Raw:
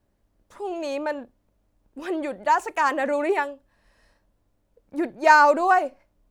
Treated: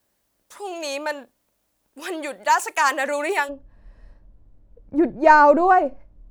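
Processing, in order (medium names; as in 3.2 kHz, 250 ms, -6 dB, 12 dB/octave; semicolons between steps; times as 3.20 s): tilt EQ +3.5 dB/octave, from 3.48 s -3.5 dB/octave; trim +2 dB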